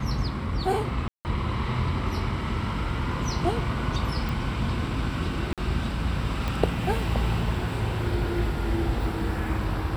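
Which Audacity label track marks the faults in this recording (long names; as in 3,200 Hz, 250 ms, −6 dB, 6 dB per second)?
1.080000	1.250000	drop-out 169 ms
4.290000	4.290000	click
5.530000	5.580000	drop-out 47 ms
6.480000	6.480000	click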